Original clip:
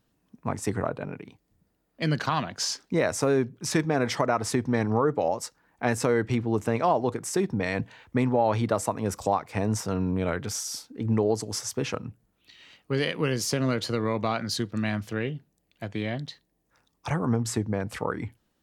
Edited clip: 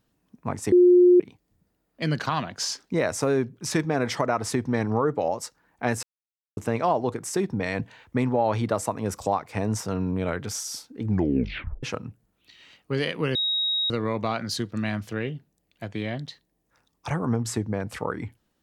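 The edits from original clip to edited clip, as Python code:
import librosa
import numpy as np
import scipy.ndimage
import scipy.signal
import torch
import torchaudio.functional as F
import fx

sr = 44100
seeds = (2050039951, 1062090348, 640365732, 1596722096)

y = fx.edit(x, sr, fx.bleep(start_s=0.72, length_s=0.48, hz=357.0, db=-11.5),
    fx.silence(start_s=6.03, length_s=0.54),
    fx.tape_stop(start_s=11.06, length_s=0.77),
    fx.bleep(start_s=13.35, length_s=0.55, hz=3790.0, db=-22.0), tone=tone)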